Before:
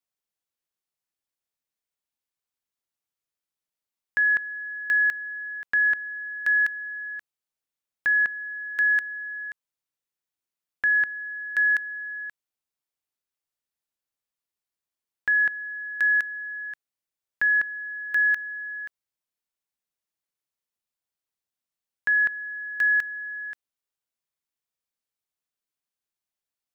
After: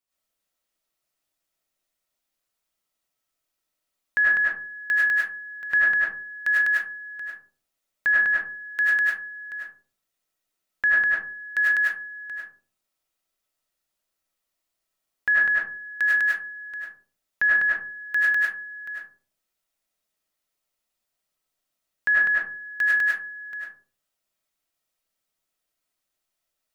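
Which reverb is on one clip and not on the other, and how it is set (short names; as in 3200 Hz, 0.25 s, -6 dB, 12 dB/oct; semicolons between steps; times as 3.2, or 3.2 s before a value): digital reverb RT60 0.45 s, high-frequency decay 0.35×, pre-delay 60 ms, DRR -7.5 dB; gain +1 dB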